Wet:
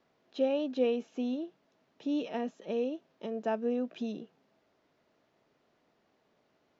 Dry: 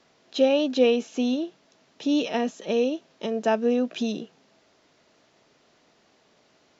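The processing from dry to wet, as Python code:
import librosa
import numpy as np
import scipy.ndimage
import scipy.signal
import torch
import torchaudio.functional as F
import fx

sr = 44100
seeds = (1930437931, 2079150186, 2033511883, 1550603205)

y = fx.lowpass(x, sr, hz=1800.0, slope=6)
y = y * librosa.db_to_amplitude(-8.5)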